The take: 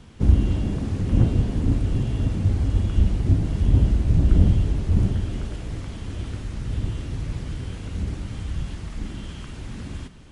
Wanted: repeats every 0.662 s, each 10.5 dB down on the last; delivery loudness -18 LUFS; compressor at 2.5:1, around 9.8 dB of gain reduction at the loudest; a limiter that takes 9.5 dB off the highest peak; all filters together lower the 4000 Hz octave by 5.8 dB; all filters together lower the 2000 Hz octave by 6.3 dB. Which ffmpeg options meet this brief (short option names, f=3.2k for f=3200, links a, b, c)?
-af "equalizer=f=2k:t=o:g=-7,equalizer=f=4k:t=o:g=-5,acompressor=threshold=-25dB:ratio=2.5,alimiter=limit=-23dB:level=0:latency=1,aecho=1:1:662|1324|1986:0.299|0.0896|0.0269,volume=14.5dB"